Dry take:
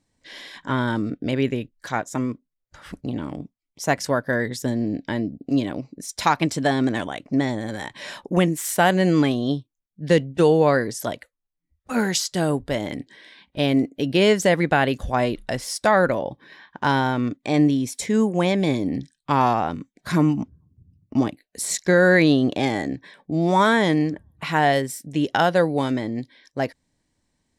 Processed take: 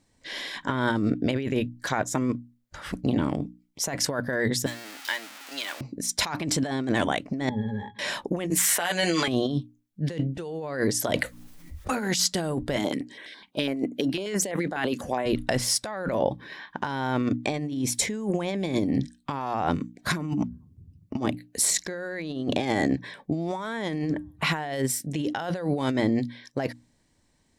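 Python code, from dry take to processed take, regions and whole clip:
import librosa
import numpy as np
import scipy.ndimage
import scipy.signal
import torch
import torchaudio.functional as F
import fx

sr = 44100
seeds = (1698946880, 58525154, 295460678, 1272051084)

y = fx.chain(x, sr, fx.zero_step(step_db=-32.5),
    fx.highpass(hz=1500.0, slope=12), at=(4.66, 5.81))
y = fx.chain(y, sr, fx.high_shelf(hz=4500.0, db=-5.5),
    fx.octave_resonator(note='G#', decay_s=0.1), at=(7.49, 7.99))
y = fx.chain(y, sr, fx.highpass(hz=1500.0, slope=6),
    fx.doubler(ms=12.0, db=-4.0),
    fx.band_squash(depth_pct=70), at=(8.5, 9.28))
y = fx.chain(y, sr, fx.hum_notches(base_hz=60, count=5),
    fx.env_flatten(amount_pct=50), at=(11.05, 12.08))
y = fx.chain(y, sr, fx.highpass(hz=220.0, slope=12),
    fx.filter_held_notch(hz=12.0, low_hz=530.0, high_hz=4900.0), at=(12.76, 15.26))
y = fx.hum_notches(y, sr, base_hz=60, count=5)
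y = fx.over_compress(y, sr, threshold_db=-27.0, ratio=-1.0)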